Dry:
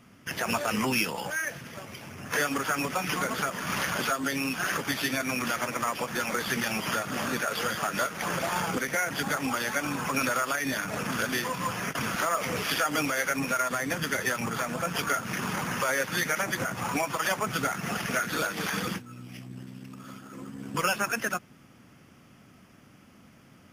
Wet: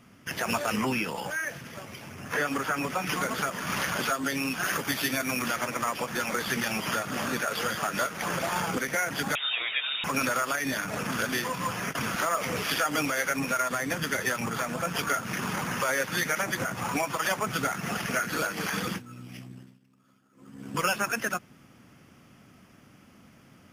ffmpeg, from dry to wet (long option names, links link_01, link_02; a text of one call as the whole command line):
ffmpeg -i in.wav -filter_complex "[0:a]asettb=1/sr,asplit=3[link_01][link_02][link_03];[link_01]atrim=end=0.764[link_04];[link_02]atrim=start=0.76:end=3.07,asetpts=PTS-STARTPTS,afade=type=in:duration=0.004:curve=qsin,afade=type=out:start_time=2.306:duration=0.004:curve=qsin,acrossover=split=2700[link_05][link_06];[link_06]acompressor=threshold=-38dB:ratio=4:attack=1:release=60[link_07];[link_05][link_07]amix=inputs=2:normalize=0[link_08];[link_03]atrim=start=3.066[link_09];[link_04][link_08]acrossfade=duration=0.004:curve1=hsin:curve2=qsin[link_10];[link_10][link_09]acrossfade=duration=0.004:curve1=qsin:curve2=hsin,asettb=1/sr,asplit=3[link_11][link_12][link_13];[link_11]atrim=end=4.634[link_14];[link_12]atrim=start=4.63:end=5.47,asetpts=PTS-STARTPTS,afade=type=in:duration=0.004:curve=qsin,afade=type=out:start_time=0.836:duration=0.004:curve=qsin,highshelf=frequency=11000:gain=7[link_15];[link_13]atrim=start=5.466[link_16];[link_14][link_15]acrossfade=duration=0.004:curve1=hsin:curve2=qsin[link_17];[link_17][link_16]acrossfade=duration=0.004:curve1=qsin:curve2=hsin,asettb=1/sr,asplit=3[link_18][link_19][link_20];[link_18]atrim=end=9.354[link_21];[link_19]atrim=start=9.35:end=10.04,asetpts=PTS-STARTPTS,afade=type=in:duration=0.004:curve=qsin,afade=type=out:start_time=0.686:duration=0.004:curve=qsin,lowpass=frequency=3300:width_type=q:width=0.5098,lowpass=frequency=3300:width_type=q:width=0.6013,lowpass=frequency=3300:width_type=q:width=0.9,lowpass=frequency=3300:width_type=q:width=2.563,afreqshift=-3900[link_22];[link_20]atrim=start=10.036[link_23];[link_21][link_22]acrossfade=duration=0.004:curve1=hsin:curve2=qsin[link_24];[link_24][link_23]acrossfade=duration=0.004:curve1=qsin:curve2=hsin,asettb=1/sr,asplit=3[link_25][link_26][link_27];[link_25]atrim=end=18.114[link_28];[link_26]atrim=start=18.11:end=18.73,asetpts=PTS-STARTPTS,afade=type=in:duration=0.004:curve=qsin,afade=type=out:start_time=0.616:duration=0.004:curve=qsin,bandreject=frequency=3600:width=8.6[link_29];[link_27]atrim=start=18.726[link_30];[link_28][link_29]acrossfade=duration=0.004:curve1=hsin:curve2=qsin[link_31];[link_31][link_30]acrossfade=duration=0.004:curve1=qsin:curve2=hsin,asplit=3[link_32][link_33][link_34];[link_32]atrim=end=19.79,asetpts=PTS-STARTPTS,afade=type=out:start_time=19.41:duration=0.38:silence=0.0944061[link_35];[link_33]atrim=start=19.79:end=20.35,asetpts=PTS-STARTPTS,volume=-20.5dB[link_36];[link_34]atrim=start=20.35,asetpts=PTS-STARTPTS,afade=type=in:duration=0.38:silence=0.0944061[link_37];[link_35][link_36][link_37]concat=n=3:v=0:a=1" out.wav